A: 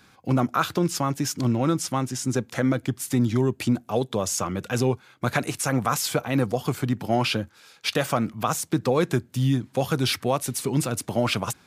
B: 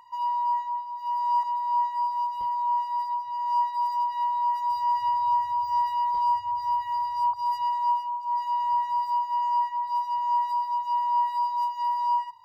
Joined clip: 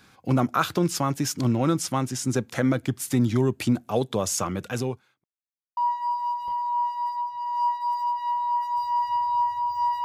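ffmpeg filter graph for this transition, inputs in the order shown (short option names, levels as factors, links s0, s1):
-filter_complex "[0:a]apad=whole_dur=10.04,atrim=end=10.04,asplit=2[s0][s1];[s0]atrim=end=5.24,asetpts=PTS-STARTPTS,afade=t=out:st=4.49:d=0.75[s2];[s1]atrim=start=5.24:end=5.77,asetpts=PTS-STARTPTS,volume=0[s3];[1:a]atrim=start=1.7:end=5.97,asetpts=PTS-STARTPTS,afade=t=in:d=0.004:c=hsin[s4];[s2][s3][s4]concat=n=3:v=0:a=1"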